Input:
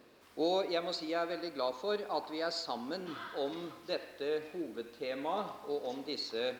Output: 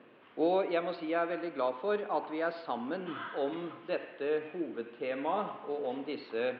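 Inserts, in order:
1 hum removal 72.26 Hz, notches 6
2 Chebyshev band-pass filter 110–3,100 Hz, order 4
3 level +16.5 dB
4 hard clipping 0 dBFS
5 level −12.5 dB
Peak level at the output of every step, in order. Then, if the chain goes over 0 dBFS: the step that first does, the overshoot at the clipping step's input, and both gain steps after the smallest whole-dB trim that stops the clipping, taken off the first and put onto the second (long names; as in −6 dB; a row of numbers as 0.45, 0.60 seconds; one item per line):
−20.5, −22.5, −6.0, −6.0, −18.5 dBFS
no step passes full scale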